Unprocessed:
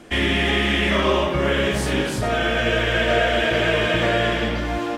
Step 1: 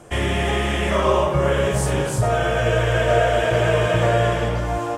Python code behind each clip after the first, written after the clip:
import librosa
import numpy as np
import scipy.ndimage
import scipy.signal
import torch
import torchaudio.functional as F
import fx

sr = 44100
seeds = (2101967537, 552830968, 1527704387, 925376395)

y = fx.graphic_eq(x, sr, hz=(125, 250, 500, 1000, 2000, 4000, 8000), db=(10, -10, 4, 4, -5, -8, 7))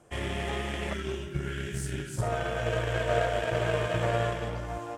y = fx.spec_box(x, sr, start_s=0.93, length_s=1.25, low_hz=420.0, high_hz=1300.0, gain_db=-22)
y = fx.cheby_harmonics(y, sr, harmonics=(3, 7), levels_db=(-19, -30), full_scale_db=-5.5)
y = y * librosa.db_to_amplitude(-7.0)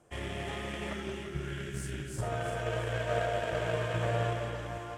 y = fx.echo_split(x, sr, split_hz=950.0, low_ms=164, high_ms=340, feedback_pct=52, wet_db=-7.0)
y = y * librosa.db_to_amplitude(-5.0)